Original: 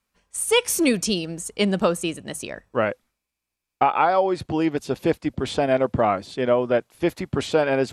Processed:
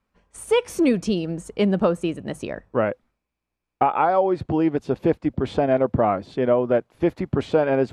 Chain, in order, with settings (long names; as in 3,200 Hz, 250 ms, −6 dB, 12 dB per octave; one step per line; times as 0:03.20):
low-pass filter 1,000 Hz 6 dB per octave
in parallel at +0.5 dB: downward compressor, threshold −31 dBFS, peak gain reduction 14.5 dB